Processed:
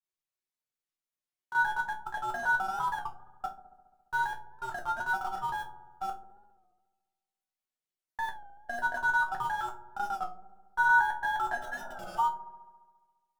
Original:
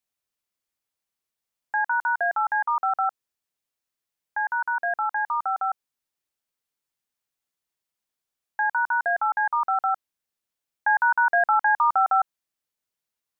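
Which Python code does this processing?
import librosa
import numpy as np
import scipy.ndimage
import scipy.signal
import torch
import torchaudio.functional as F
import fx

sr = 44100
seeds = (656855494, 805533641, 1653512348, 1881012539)

p1 = fx.block_reorder(x, sr, ms=128.0, group=4)
p2 = fx.schmitt(p1, sr, flips_db=-27.0)
p3 = p1 + (p2 * librosa.db_to_amplitude(-8.0))
p4 = fx.granulator(p3, sr, seeds[0], grain_ms=100.0, per_s=20.0, spray_ms=20.0, spread_st=0)
p5 = fx.resonator_bank(p4, sr, root=47, chord='major', decay_s=0.23)
p6 = fx.spec_repair(p5, sr, seeds[1], start_s=11.64, length_s=0.52, low_hz=480.0, high_hz=1600.0, source='before')
p7 = p6 + fx.echo_wet_lowpass(p6, sr, ms=69, feedback_pct=72, hz=610.0, wet_db=-9.0, dry=0)
p8 = fx.record_warp(p7, sr, rpm=33.33, depth_cents=100.0)
y = p8 * librosa.db_to_amplitude(5.0)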